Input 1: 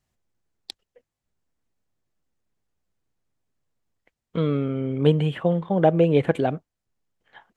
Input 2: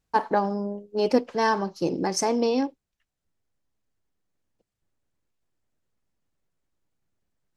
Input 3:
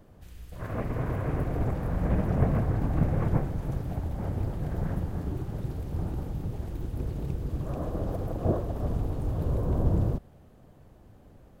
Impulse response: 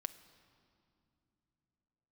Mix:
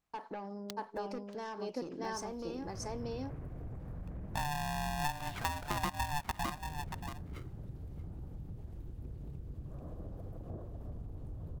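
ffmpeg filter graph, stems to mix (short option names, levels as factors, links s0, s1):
-filter_complex "[0:a]highpass=f=260:w=0.5412,highpass=f=260:w=1.3066,highshelf=f=2000:g=-11.5,aeval=exprs='val(0)*sgn(sin(2*PI*440*n/s))':c=same,volume=0.794,asplit=2[s0][s1];[s1]volume=0.119[s2];[1:a]volume=0.282,asplit=2[s3][s4];[s4]volume=0.473[s5];[2:a]lowshelf=f=270:g=7.5,acompressor=mode=upward:threshold=0.0631:ratio=2.5,adelay=2050,volume=0.158[s6];[s3][s6]amix=inputs=2:normalize=0,asoftclip=type=tanh:threshold=0.0355,acompressor=threshold=0.01:ratio=6,volume=1[s7];[s2][s5]amix=inputs=2:normalize=0,aecho=0:1:631:1[s8];[s0][s7][s8]amix=inputs=3:normalize=0,acompressor=threshold=0.0251:ratio=8"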